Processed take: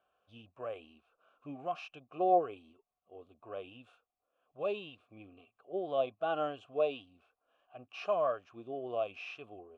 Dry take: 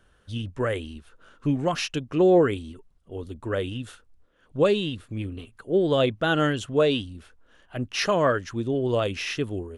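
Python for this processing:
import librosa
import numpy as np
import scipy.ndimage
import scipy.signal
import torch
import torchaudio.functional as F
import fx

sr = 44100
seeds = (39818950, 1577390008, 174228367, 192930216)

y = fx.hpss(x, sr, part='percussive', gain_db=-9)
y = fx.vowel_filter(y, sr, vowel='a')
y = y * librosa.db_to_amplitude(3.0)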